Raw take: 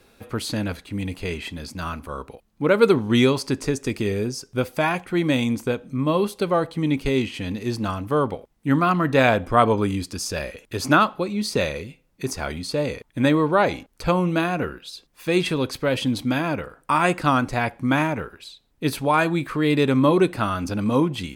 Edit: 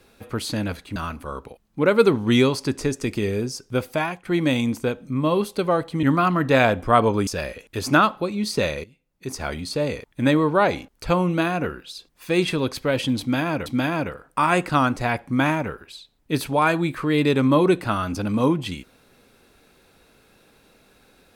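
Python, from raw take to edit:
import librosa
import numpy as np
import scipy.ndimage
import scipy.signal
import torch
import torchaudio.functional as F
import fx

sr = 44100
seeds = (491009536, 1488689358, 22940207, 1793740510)

y = fx.edit(x, sr, fx.cut(start_s=0.96, length_s=0.83),
    fx.fade_out_to(start_s=4.73, length_s=0.35, floor_db=-12.5),
    fx.cut(start_s=6.86, length_s=1.81),
    fx.cut(start_s=9.91, length_s=0.34),
    fx.fade_in_from(start_s=11.82, length_s=0.6, curve='qua', floor_db=-15.0),
    fx.repeat(start_s=16.18, length_s=0.46, count=2), tone=tone)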